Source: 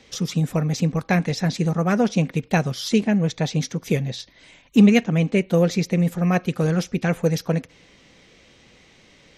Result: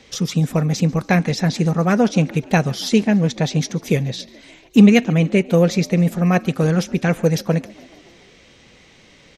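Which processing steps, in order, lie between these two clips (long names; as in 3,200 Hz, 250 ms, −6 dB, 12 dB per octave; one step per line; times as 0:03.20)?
echo with shifted repeats 143 ms, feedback 64%, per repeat +46 Hz, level −23.5 dB
level +3.5 dB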